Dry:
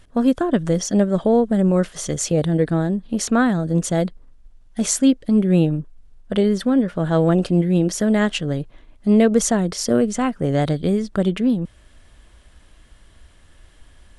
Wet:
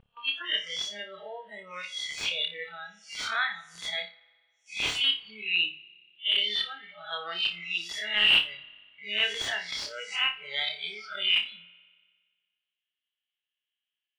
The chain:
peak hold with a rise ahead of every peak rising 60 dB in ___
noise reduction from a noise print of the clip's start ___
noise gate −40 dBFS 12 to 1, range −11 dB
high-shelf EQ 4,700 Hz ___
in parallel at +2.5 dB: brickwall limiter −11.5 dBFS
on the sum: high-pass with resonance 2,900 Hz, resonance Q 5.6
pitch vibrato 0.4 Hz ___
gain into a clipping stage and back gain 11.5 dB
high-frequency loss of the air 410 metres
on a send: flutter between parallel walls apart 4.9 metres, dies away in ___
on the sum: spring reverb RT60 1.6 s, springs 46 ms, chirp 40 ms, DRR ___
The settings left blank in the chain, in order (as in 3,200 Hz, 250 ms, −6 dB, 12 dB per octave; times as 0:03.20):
0.63 s, 28 dB, −3 dB, 13 cents, 0.27 s, 19.5 dB